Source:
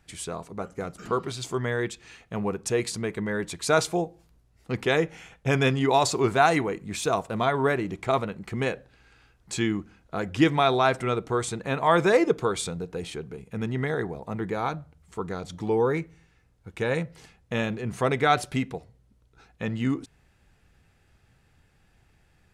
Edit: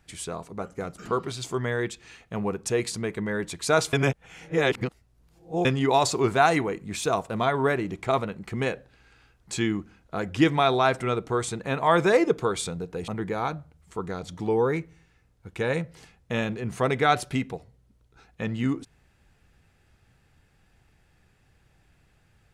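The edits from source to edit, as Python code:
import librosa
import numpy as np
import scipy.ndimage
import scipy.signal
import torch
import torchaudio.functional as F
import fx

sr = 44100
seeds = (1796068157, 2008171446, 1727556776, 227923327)

y = fx.edit(x, sr, fx.reverse_span(start_s=3.93, length_s=1.72),
    fx.cut(start_s=13.08, length_s=1.21), tone=tone)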